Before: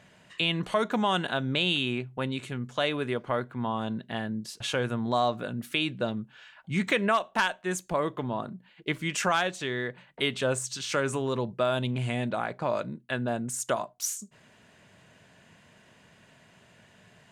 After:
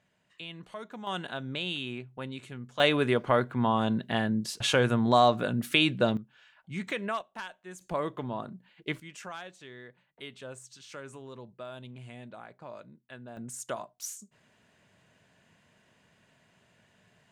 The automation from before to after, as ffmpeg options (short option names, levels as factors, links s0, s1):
-af "asetnsamples=n=441:p=0,asendcmd='1.07 volume volume -7.5dB;2.8 volume volume 4.5dB;6.17 volume volume -8dB;7.21 volume volume -14.5dB;7.81 volume volume -3.5dB;9 volume volume -16dB;13.37 volume volume -7.5dB',volume=0.168"